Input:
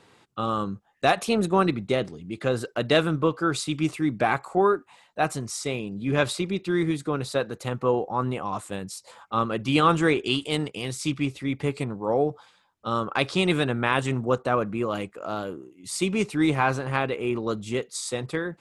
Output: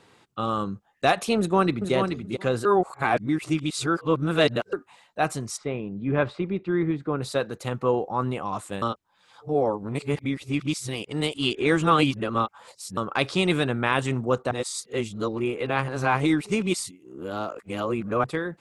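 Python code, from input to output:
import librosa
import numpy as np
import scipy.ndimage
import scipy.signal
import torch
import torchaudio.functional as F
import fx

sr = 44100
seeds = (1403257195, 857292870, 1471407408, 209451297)

y = fx.echo_throw(x, sr, start_s=1.38, length_s=0.55, ms=430, feedback_pct=10, wet_db=-6.0)
y = fx.lowpass(y, sr, hz=1800.0, slope=12, at=(5.56, 7.21), fade=0.02)
y = fx.edit(y, sr, fx.reverse_span(start_s=2.65, length_s=2.08),
    fx.reverse_span(start_s=8.82, length_s=4.15),
    fx.reverse_span(start_s=14.51, length_s=3.73), tone=tone)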